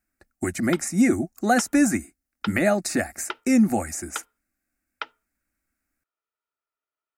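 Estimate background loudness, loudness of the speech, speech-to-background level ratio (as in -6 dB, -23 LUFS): -38.5 LUFS, -23.5 LUFS, 15.0 dB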